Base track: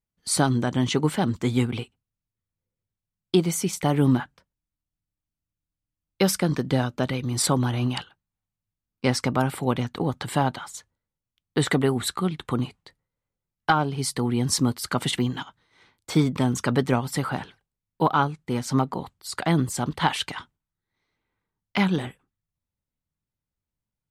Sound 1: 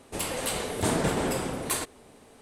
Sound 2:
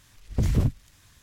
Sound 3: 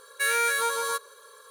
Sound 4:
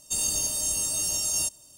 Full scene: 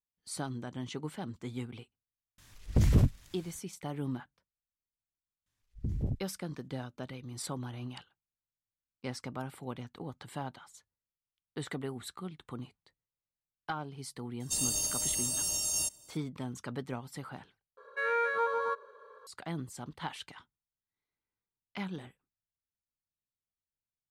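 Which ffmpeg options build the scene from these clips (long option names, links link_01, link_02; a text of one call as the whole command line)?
ffmpeg -i bed.wav -i cue0.wav -i cue1.wav -i cue2.wav -i cue3.wav -filter_complex "[2:a]asplit=2[link_01][link_02];[0:a]volume=-16.5dB[link_03];[link_02]afwtdn=0.0447[link_04];[3:a]lowpass=1200[link_05];[link_03]asplit=2[link_06][link_07];[link_06]atrim=end=17.774[link_08];[link_05]atrim=end=1.5[link_09];[link_07]atrim=start=19.266[link_10];[link_01]atrim=end=1.22,asetpts=PTS-STARTPTS,volume=-1.5dB,afade=type=in:duration=0.004:curve=hsin,afade=type=out:start_time=1.216:duration=0.004:curve=hsin,adelay=2380[link_11];[link_04]atrim=end=1.22,asetpts=PTS-STARTPTS,volume=-11dB,afade=type=in:duration=0.004:curve=hsin,afade=type=out:start_time=1.216:duration=0.004:curve=hsin,adelay=5460[link_12];[4:a]atrim=end=1.77,asetpts=PTS-STARTPTS,volume=-5dB,afade=type=in:duration=0.004:curve=hsin,afade=type=out:start_time=1.766:duration=0.004:curve=hsin,adelay=14400[link_13];[link_08][link_09]acrossfade=duration=0.004:curve1=hsin:curve2=hsin[link_14];[link_14][link_10]acrossfade=duration=0.004:curve1=hsin:curve2=hsin[link_15];[link_15][link_11][link_12][link_13]amix=inputs=4:normalize=0" out.wav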